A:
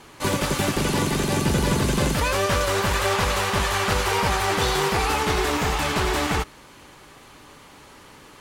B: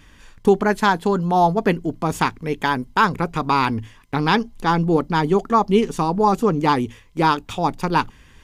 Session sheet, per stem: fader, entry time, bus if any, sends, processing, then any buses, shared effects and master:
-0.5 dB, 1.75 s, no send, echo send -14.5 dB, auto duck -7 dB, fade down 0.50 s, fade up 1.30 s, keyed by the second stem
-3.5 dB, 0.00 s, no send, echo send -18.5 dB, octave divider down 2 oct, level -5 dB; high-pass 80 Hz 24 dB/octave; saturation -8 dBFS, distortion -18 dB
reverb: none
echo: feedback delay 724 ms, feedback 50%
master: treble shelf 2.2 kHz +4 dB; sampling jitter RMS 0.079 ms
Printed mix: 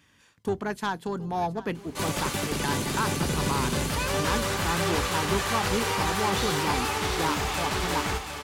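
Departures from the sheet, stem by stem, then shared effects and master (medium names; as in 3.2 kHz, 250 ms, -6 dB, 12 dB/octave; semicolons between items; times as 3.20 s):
stem B -3.5 dB -> -11.5 dB; master: missing sampling jitter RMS 0.079 ms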